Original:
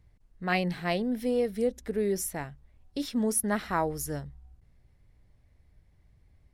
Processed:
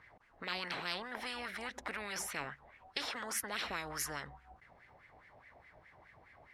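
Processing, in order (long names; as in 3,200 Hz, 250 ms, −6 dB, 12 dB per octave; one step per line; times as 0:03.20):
LFO wah 4.8 Hz 700–2,000 Hz, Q 3.9
every bin compressed towards the loudest bin 10 to 1
level +4 dB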